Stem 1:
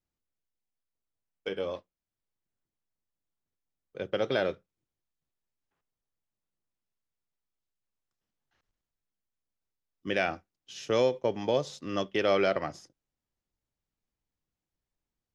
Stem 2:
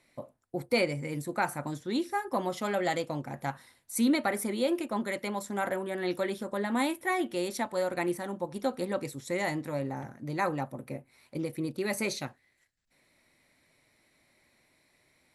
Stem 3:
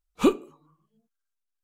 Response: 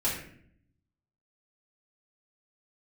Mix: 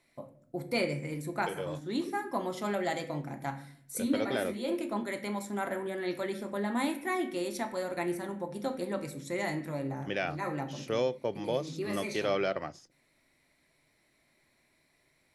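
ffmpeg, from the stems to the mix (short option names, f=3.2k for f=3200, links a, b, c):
-filter_complex "[0:a]volume=-4.5dB,asplit=2[a][b];[1:a]volume=-5dB,asplit=2[c][d];[d]volume=-12.5dB[e];[2:a]acompressor=threshold=-28dB:ratio=6,bandpass=f=360:t=q:w=1.9:csg=0,adelay=1800,volume=-9dB[f];[b]apad=whole_len=676932[g];[c][g]sidechaincompress=threshold=-47dB:ratio=8:attack=44:release=209[h];[3:a]atrim=start_sample=2205[i];[e][i]afir=irnorm=-1:irlink=0[j];[a][h][f][j]amix=inputs=4:normalize=0"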